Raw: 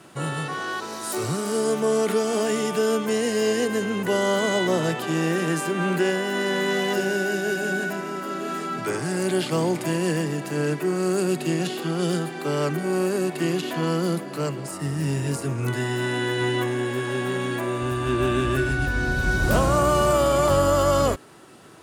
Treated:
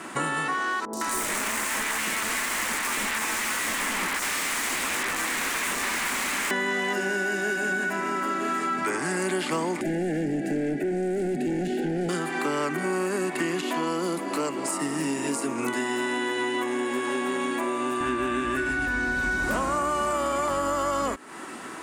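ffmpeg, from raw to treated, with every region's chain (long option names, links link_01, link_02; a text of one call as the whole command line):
ffmpeg -i in.wav -filter_complex "[0:a]asettb=1/sr,asplit=3[link_01][link_02][link_03];[link_01]atrim=end=0.854[link_04];[link_02]atrim=start=0.85:end=6.51,asetpts=PTS-STARTPTS,afade=type=in:duration=0.004:curve=qsin,afade=type=out:start_time=5.656:duration=0.004:curve=qsin,bandreject=frequency=92.65:width_type=h:width=4,bandreject=frequency=185.3:width_type=h:width=4,bandreject=frequency=277.95:width_type=h:width=4,bandreject=frequency=370.6:width_type=h:width=4,bandreject=frequency=463.25:width_type=h:width=4,bandreject=frequency=555.9:width_type=h:width=4,bandreject=frequency=648.55:width_type=h:width=4,bandreject=frequency=741.2:width_type=h:width=4,bandreject=frequency=833.85:width_type=h:width=4,bandreject=frequency=926.5:width_type=h:width=4,aeval=exprs='(mod(16.8*val(0)+1,2)-1)/16.8':channel_layout=same,acrossover=split=820|4600[link_05][link_06][link_07];[link_07]adelay=80[link_08];[link_06]adelay=160[link_09];[link_05][link_09][link_08]amix=inputs=3:normalize=0,atrim=end_sample=249606[link_10];[link_03]atrim=start=6.506[link_11];[link_04][link_10]acrossfade=duration=0.004:curve1=hsin:curve2=qsin[link_12];[link_12][link_11]acrossfade=duration=0.004:curve1=qsin:curve2=hsin,asettb=1/sr,asplit=3[link_13][link_14][link_15];[link_13]atrim=end=9.814[link_16];[link_14]atrim=start=9.81:end=12.09,asetpts=PTS-STARTPTS,afade=type=in:duration=0.004:curve=qsin,afade=type=out:start_time=2.276:duration=0.004:curve=qsin,volume=27dB,asoftclip=hard,volume=-27dB,asuperstop=centerf=1100:order=12:qfactor=1.8,tiltshelf=frequency=810:gain=8.5[link_17];[link_15]atrim=start=12.086[link_18];[link_16][link_17]acrossfade=duration=0.004:curve1=hsin:curve2=qsin[link_19];[link_19][link_18]acrossfade=duration=0.004:curve1=qsin:curve2=hsin,asettb=1/sr,asplit=3[link_20][link_21][link_22];[link_20]atrim=end=13.624[link_23];[link_21]atrim=start=13.62:end=18.01,asetpts=PTS-STARTPTS,afade=type=in:duration=0.004:curve=qsin,afade=type=out:start_time=4.386:duration=0.004:curve=qsin,highpass=210,equalizer=frequency=1700:width_type=o:width=0.71:gain=-7[link_24];[link_22]atrim=start=18.006[link_25];[link_23][link_24]acrossfade=duration=0.004:curve1=hsin:curve2=qsin[link_26];[link_26][link_25]acrossfade=duration=0.004:curve1=qsin:curve2=hsin,equalizer=frequency=125:width_type=o:width=1:gain=-10,equalizer=frequency=250:width_type=o:width=1:gain=11,equalizer=frequency=1000:width_type=o:width=1:gain=9,equalizer=frequency=2000:width_type=o:width=1:gain=11,equalizer=frequency=8000:width_type=o:width=1:gain=9,acompressor=threshold=-27dB:ratio=6,volume=2dB" out.wav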